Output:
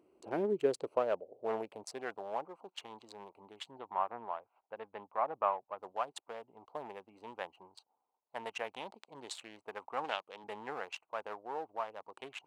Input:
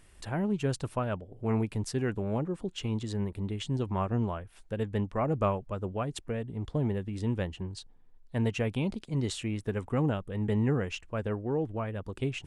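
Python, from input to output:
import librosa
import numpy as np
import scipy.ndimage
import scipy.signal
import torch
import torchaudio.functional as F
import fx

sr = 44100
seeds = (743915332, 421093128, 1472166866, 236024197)

y = fx.wiener(x, sr, points=25)
y = fx.weighting(y, sr, curve='D', at=(10.04, 10.44))
y = fx.filter_sweep_highpass(y, sr, from_hz=340.0, to_hz=850.0, start_s=0.12, end_s=2.49, q=2.5)
y = fx.air_absorb(y, sr, metres=350.0, at=(3.71, 5.79))
y = y * 10.0 ** (-3.0 / 20.0)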